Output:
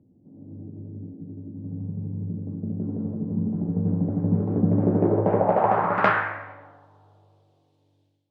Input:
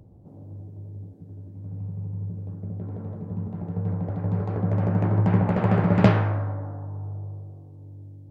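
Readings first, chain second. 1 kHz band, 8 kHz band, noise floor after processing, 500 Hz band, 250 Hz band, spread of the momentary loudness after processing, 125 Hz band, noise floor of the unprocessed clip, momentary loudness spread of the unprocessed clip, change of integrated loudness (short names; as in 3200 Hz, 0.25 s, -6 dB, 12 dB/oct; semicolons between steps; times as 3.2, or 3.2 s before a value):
+7.5 dB, n/a, -66 dBFS, +4.5 dB, +1.5 dB, 18 LU, -4.0 dB, -46 dBFS, 22 LU, +1.5 dB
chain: band-pass sweep 250 Hz -> 3500 Hz, 4.7–6.85; notches 60/120/180 Hz; AGC gain up to 13 dB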